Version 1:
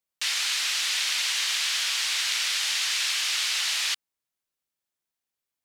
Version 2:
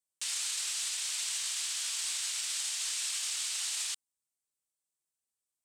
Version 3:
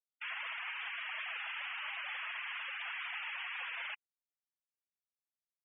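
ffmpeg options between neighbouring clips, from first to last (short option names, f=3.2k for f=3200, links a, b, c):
-af "equalizer=f=1.9k:w=1.2:g=-4.5,alimiter=limit=-22.5dB:level=0:latency=1:release=27,equalizer=f=8.3k:w=1.6:g=13.5,volume=-8dB"
-filter_complex "[0:a]highpass=f=260:t=q:w=0.5412,highpass=f=260:t=q:w=1.307,lowpass=f=3.1k:t=q:w=0.5176,lowpass=f=3.1k:t=q:w=0.7071,lowpass=f=3.1k:t=q:w=1.932,afreqshift=-330,asplit=2[a][b];[b]highpass=f=720:p=1,volume=9dB,asoftclip=type=tanh:threshold=-33.5dB[c];[a][c]amix=inputs=2:normalize=0,lowpass=f=1.7k:p=1,volume=-6dB,afftfilt=real='re*gte(hypot(re,im),0.00631)':imag='im*gte(hypot(re,im),0.00631)':win_size=1024:overlap=0.75,volume=5.5dB"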